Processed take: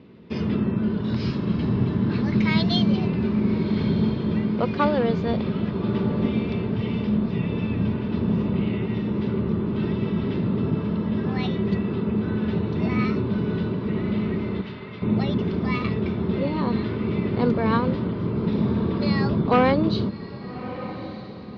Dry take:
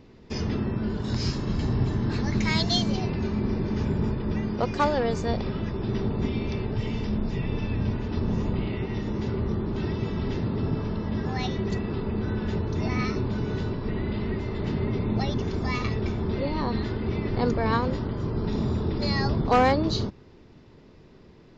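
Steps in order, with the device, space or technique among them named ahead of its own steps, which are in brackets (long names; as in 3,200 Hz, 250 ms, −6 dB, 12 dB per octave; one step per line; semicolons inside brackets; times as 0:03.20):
0:14.61–0:15.02: Bessel high-pass filter 1,300 Hz
guitar cabinet (loudspeaker in its box 110–3,700 Hz, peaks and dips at 190 Hz +7 dB, 790 Hz −6 dB, 1,800 Hz −4 dB)
feedback delay with all-pass diffusion 1,214 ms, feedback 46%, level −13.5 dB
level +3 dB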